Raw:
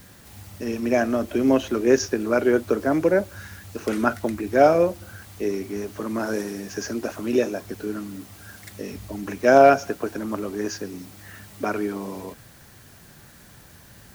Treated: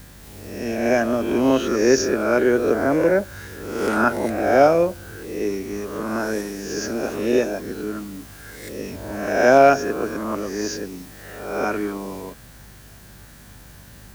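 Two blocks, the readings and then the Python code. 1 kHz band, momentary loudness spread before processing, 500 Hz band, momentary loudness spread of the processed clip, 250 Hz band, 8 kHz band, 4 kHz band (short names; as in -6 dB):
+2.0 dB, 20 LU, +2.0 dB, 19 LU, +1.5 dB, +4.0 dB, +4.0 dB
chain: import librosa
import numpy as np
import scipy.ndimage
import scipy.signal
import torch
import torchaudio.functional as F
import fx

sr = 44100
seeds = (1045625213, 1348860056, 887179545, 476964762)

y = fx.spec_swells(x, sr, rise_s=0.92)
y = fx.add_hum(y, sr, base_hz=50, snr_db=26)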